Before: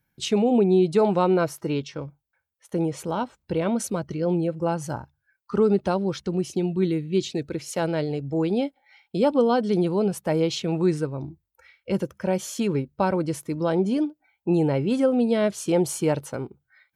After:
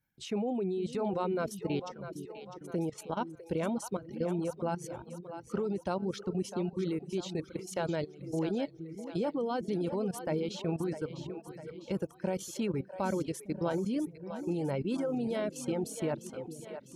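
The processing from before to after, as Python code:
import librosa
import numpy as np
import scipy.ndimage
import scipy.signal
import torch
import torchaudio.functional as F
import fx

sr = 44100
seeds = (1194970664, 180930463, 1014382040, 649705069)

y = fx.level_steps(x, sr, step_db=13)
y = fx.echo_split(y, sr, split_hz=400.0, low_ms=456, high_ms=652, feedback_pct=52, wet_db=-9.5)
y = fx.dereverb_blind(y, sr, rt60_s=0.72)
y = F.gain(torch.from_numpy(y), -4.5).numpy()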